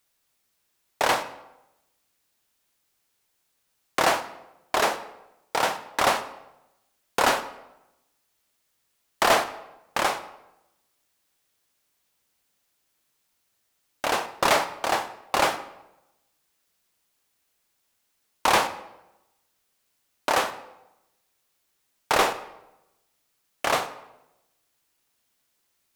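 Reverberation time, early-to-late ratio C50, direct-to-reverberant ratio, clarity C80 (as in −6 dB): 0.90 s, 13.5 dB, 11.0 dB, 15.5 dB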